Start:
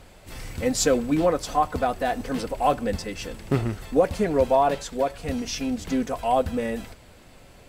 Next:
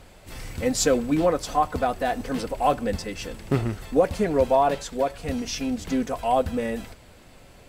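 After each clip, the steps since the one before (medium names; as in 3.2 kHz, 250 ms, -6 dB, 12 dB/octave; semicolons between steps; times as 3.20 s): no audible change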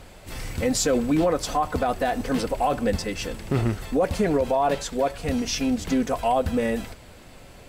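peak limiter -17 dBFS, peak gain reduction 8.5 dB; trim +3.5 dB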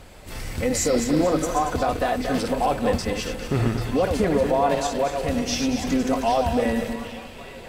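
backward echo that repeats 116 ms, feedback 57%, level -5.5 dB; repeats whose band climbs or falls 789 ms, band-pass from 3.5 kHz, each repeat -0.7 oct, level -7 dB; spectral replace 0.78–1.68 s, 1.5–5.6 kHz both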